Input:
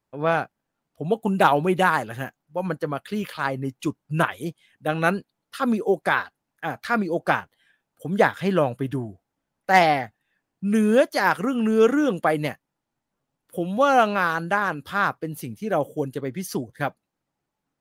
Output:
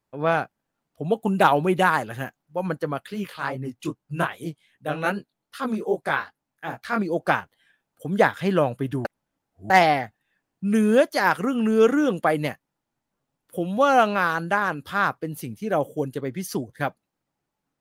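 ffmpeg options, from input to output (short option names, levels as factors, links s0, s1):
-filter_complex "[0:a]asplit=3[s0][s1][s2];[s0]afade=t=out:st=3.07:d=0.02[s3];[s1]flanger=delay=15:depth=7.9:speed=2.5,afade=t=in:st=3.07:d=0.02,afade=t=out:st=6.99:d=0.02[s4];[s2]afade=t=in:st=6.99:d=0.02[s5];[s3][s4][s5]amix=inputs=3:normalize=0,asplit=3[s6][s7][s8];[s6]atrim=end=9.052[s9];[s7]atrim=start=9.048:end=9.702,asetpts=PTS-STARTPTS,areverse[s10];[s8]atrim=start=9.698[s11];[s9][s10]acrossfade=d=0.004:c1=hsin:c2=hsin[s12];[s12][s11]acrossfade=d=0.004:c1=hsin:c2=hsin"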